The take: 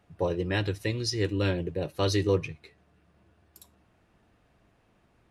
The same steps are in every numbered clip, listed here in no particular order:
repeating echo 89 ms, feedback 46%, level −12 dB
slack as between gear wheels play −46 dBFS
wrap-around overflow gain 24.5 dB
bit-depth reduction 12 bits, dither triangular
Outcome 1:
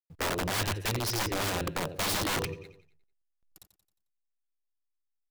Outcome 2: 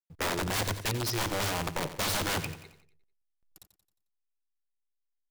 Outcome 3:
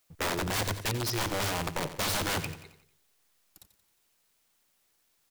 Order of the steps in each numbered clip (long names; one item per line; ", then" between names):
bit-depth reduction, then slack as between gear wheels, then repeating echo, then wrap-around overflow
bit-depth reduction, then wrap-around overflow, then slack as between gear wheels, then repeating echo
wrap-around overflow, then slack as between gear wheels, then bit-depth reduction, then repeating echo